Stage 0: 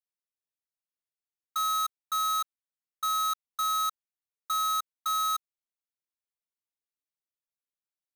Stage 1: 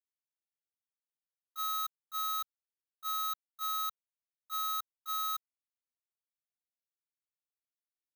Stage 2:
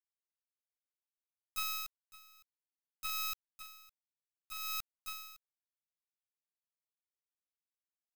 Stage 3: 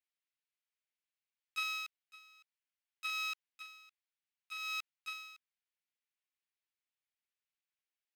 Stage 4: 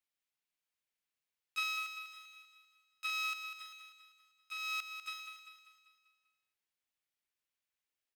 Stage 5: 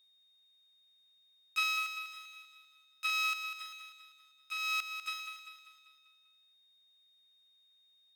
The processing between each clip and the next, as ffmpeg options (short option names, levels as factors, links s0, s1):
-af "highshelf=f=8500:g=9,agate=range=0.2:threshold=0.0398:ratio=16:detection=peak,equalizer=f=125:t=o:w=1:g=-12,equalizer=f=1000:t=o:w=1:g=-3,equalizer=f=8000:t=o:w=1:g=-9,volume=0.531"
-filter_complex "[0:a]acrossover=split=160[s0][s1];[s1]acompressor=threshold=0.00891:ratio=6[s2];[s0][s2]amix=inputs=2:normalize=0,acrusher=bits=4:dc=4:mix=0:aa=0.000001,aeval=exprs='val(0)*pow(10,-26*(0.5-0.5*cos(2*PI*0.62*n/s))/20)':c=same,volume=2.99"
-af "bandpass=f=2400:t=q:w=1.4:csg=0,volume=2"
-af "aecho=1:1:196|392|588|784|980|1176:0.355|0.174|0.0852|0.0417|0.0205|0.01,volume=1.12"
-af "aeval=exprs='val(0)+0.000316*sin(2*PI*3700*n/s)':c=same,volume=1.68"